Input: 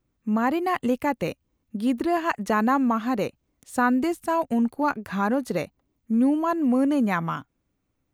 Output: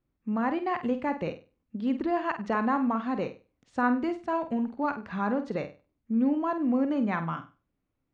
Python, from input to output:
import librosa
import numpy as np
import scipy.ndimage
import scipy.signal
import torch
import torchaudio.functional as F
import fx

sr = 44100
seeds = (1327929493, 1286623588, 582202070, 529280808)

y = scipy.ndimage.gaussian_filter1d(x, 1.9, mode='constant')
y = fx.hum_notches(y, sr, base_hz=50, count=2)
y = fx.room_flutter(y, sr, wall_m=8.4, rt60_s=0.31)
y = y * 10.0 ** (-5.0 / 20.0)